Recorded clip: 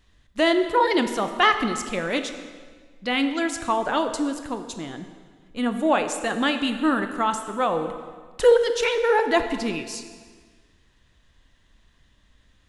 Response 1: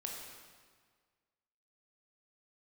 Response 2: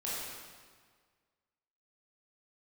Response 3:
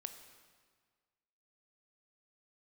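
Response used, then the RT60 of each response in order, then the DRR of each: 3; 1.7 s, 1.7 s, 1.7 s; -1.0 dB, -8.5 dB, 7.5 dB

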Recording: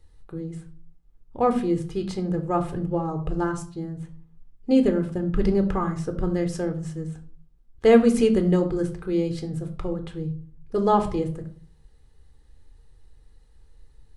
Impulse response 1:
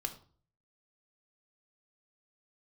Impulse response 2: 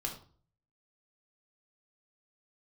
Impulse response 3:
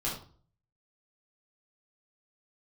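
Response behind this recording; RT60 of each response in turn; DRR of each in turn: 1; 0.45 s, 0.45 s, 0.45 s; 6.5 dB, 1.0 dB, -6.5 dB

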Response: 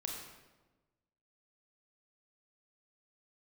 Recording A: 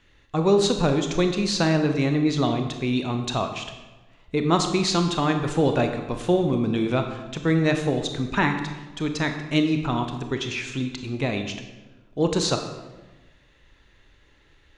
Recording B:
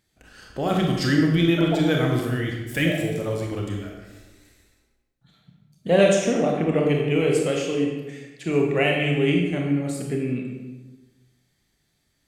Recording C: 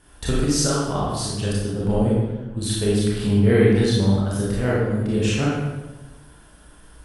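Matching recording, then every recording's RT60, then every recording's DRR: B; 1.2 s, 1.2 s, 1.2 s; 5.5 dB, 0.0 dB, -7.0 dB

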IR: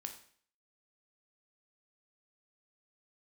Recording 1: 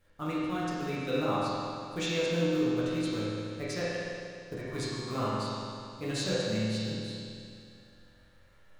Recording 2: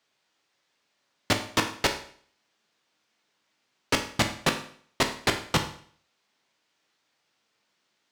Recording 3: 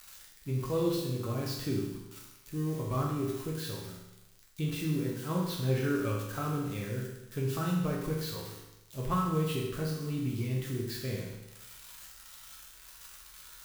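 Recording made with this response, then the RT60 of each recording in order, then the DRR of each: 2; 2.4 s, 0.55 s, 0.95 s; -9.5 dB, 5.0 dB, -3.5 dB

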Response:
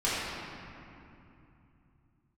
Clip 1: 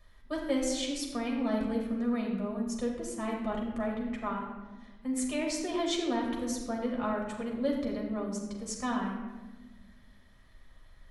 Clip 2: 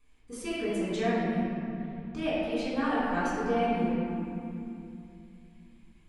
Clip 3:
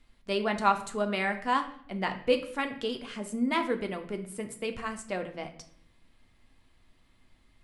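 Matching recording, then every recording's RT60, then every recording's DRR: 2; 1.3 s, 2.8 s, 0.65 s; -2.0 dB, -11.5 dB, 5.0 dB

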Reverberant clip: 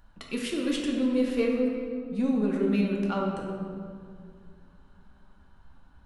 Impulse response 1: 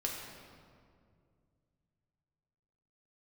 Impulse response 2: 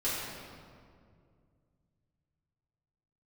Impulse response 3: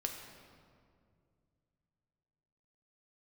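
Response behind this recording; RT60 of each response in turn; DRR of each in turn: 1; 2.2 s, 2.2 s, 2.2 s; -2.0 dB, -11.0 dB, 2.0 dB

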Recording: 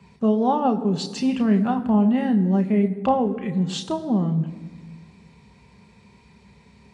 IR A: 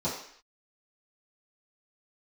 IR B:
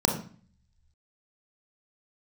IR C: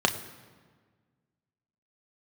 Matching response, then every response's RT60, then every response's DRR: C; 0.60 s, 0.45 s, 1.6 s; -11.5 dB, 2.0 dB, 5.0 dB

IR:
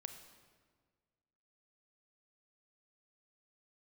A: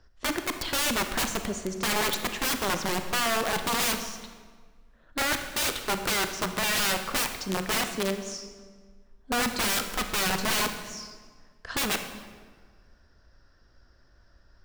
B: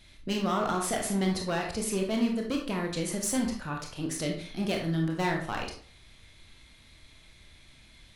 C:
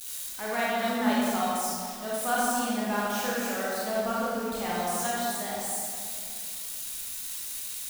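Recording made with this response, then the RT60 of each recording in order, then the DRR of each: A; 1.6 s, 0.50 s, 2.3 s; 7.0 dB, 0.5 dB, -7.0 dB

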